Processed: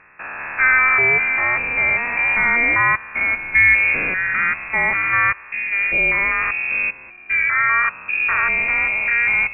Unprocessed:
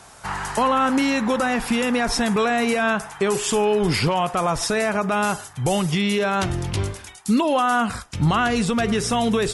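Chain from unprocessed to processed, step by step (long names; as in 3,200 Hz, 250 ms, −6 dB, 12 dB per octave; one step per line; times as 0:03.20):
spectrum averaged block by block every 200 ms
voice inversion scrambler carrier 2,600 Hz
expander for the loud parts 1.5 to 1, over −33 dBFS
level +7 dB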